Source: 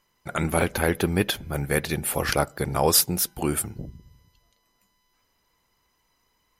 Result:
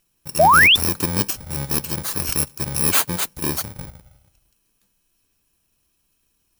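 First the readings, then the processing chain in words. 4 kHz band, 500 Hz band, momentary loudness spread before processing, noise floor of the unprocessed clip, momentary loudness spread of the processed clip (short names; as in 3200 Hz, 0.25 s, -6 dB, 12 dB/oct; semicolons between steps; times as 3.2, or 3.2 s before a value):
+9.0 dB, 0.0 dB, 11 LU, -71 dBFS, 14 LU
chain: FFT order left unsorted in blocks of 64 samples; painted sound rise, 0.39–0.76, 570–3700 Hz -13 dBFS; gain +1.5 dB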